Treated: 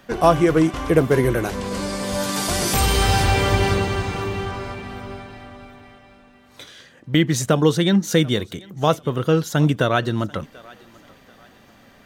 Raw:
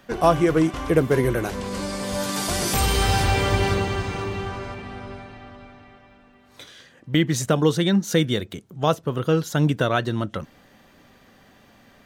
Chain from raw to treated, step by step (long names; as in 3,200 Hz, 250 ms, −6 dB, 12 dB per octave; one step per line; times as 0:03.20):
feedback echo with a high-pass in the loop 738 ms, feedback 38%, level −22 dB
level +2.5 dB